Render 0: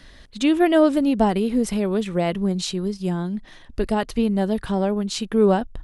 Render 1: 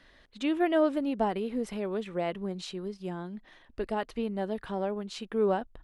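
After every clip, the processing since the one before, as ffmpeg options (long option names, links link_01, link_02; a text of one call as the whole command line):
ffmpeg -i in.wav -af "bass=frequency=250:gain=-9,treble=frequency=4000:gain=-10,volume=-7.5dB" out.wav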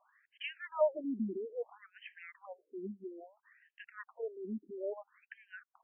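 ffmpeg -i in.wav -af "tremolo=f=2.4:d=0.55,afftfilt=real='re*between(b*sr/1024,270*pow(2300/270,0.5+0.5*sin(2*PI*0.6*pts/sr))/1.41,270*pow(2300/270,0.5+0.5*sin(2*PI*0.6*pts/sr))*1.41)':imag='im*between(b*sr/1024,270*pow(2300/270,0.5+0.5*sin(2*PI*0.6*pts/sr))/1.41,270*pow(2300/270,0.5+0.5*sin(2*PI*0.6*pts/sr))*1.41)':win_size=1024:overlap=0.75" out.wav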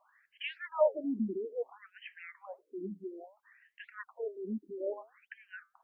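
ffmpeg -i in.wav -af "flanger=delay=2:depth=6.9:regen=-80:speed=1.5:shape=sinusoidal,volume=7dB" out.wav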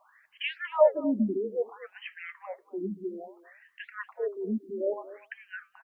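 ffmpeg -i in.wav -af "aecho=1:1:236:0.141,volume=6.5dB" out.wav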